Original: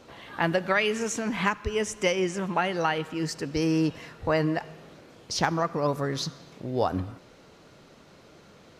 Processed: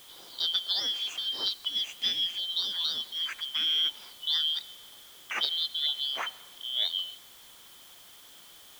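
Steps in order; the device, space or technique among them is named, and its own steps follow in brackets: split-band scrambled radio (four-band scrambler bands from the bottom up 3412; BPF 350–3100 Hz; white noise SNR 21 dB)

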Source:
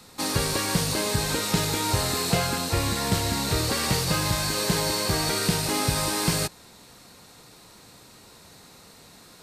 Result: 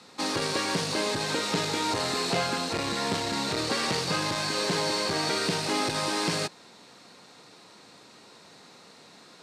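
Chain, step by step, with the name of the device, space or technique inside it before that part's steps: public-address speaker with an overloaded transformer (core saturation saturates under 350 Hz; BPF 200–5900 Hz)

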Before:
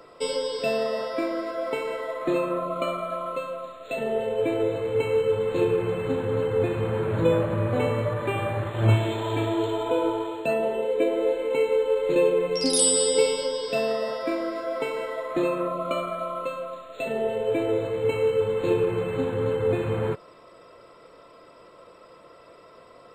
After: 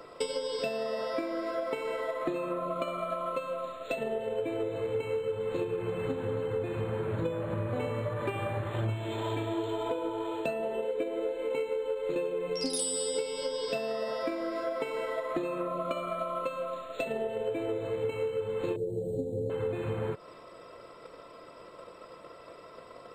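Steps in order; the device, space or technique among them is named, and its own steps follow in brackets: drum-bus smash (transient shaper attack +7 dB, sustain +1 dB; compressor 6:1, threshold -29 dBFS, peak gain reduction 16.5 dB; soft clip -19 dBFS, distortion -27 dB); 18.76–19.5 inverse Chebyshev band-stop 1100–2700 Hz, stop band 50 dB

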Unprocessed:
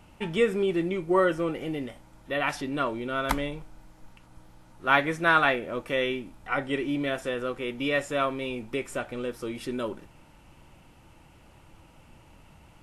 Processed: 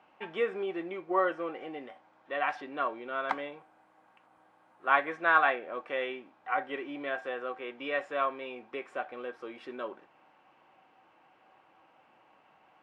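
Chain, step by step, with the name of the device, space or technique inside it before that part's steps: 3.58–5.09 resonant high shelf 7300 Hz +9.5 dB, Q 1.5; tin-can telephone (BPF 440–2500 Hz; small resonant body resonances 760/1100/1600 Hz, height 12 dB, ringing for 95 ms); gain -4 dB

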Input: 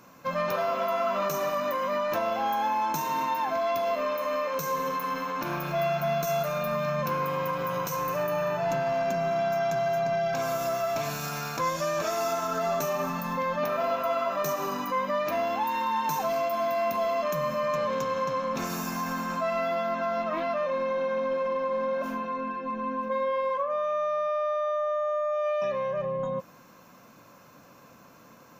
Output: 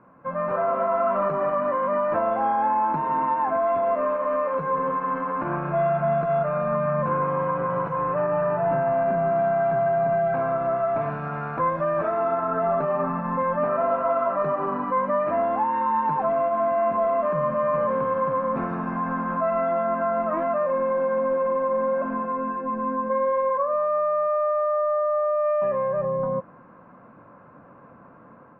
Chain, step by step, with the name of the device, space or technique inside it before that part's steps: action camera in a waterproof case (LPF 1600 Hz 24 dB/oct; AGC gain up to 5 dB; AAC 48 kbps 44100 Hz)

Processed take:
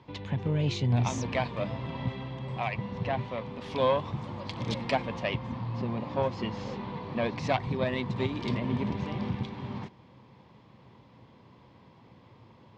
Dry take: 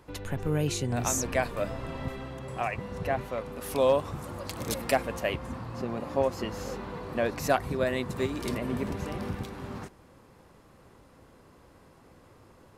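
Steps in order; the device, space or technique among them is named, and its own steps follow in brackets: guitar amplifier (tube stage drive 17 dB, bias 0.65; tone controls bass +5 dB, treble +6 dB; speaker cabinet 100–4500 Hz, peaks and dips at 120 Hz +8 dB, 210 Hz +5 dB, 950 Hz +8 dB, 1400 Hz -6 dB, 2200 Hz +5 dB, 3300 Hz +6 dB)

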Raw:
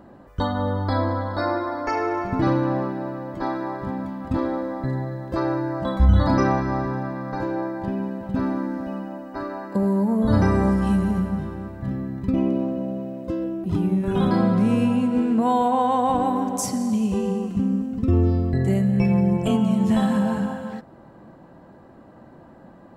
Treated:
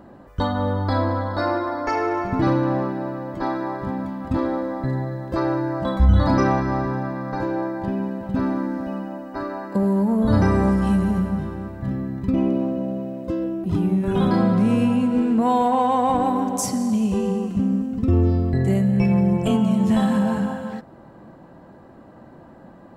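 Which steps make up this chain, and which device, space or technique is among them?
parallel distortion (in parallel at -13 dB: hard clip -21 dBFS, distortion -9 dB)

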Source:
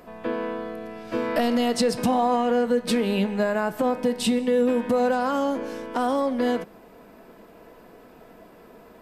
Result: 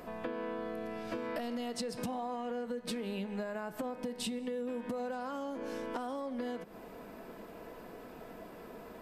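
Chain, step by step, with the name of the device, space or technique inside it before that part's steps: serial compression, peaks first (compressor, threshold -31 dBFS, peak gain reduction 13 dB; compressor 1.5:1, threshold -42 dBFS, peak gain reduction 5 dB)

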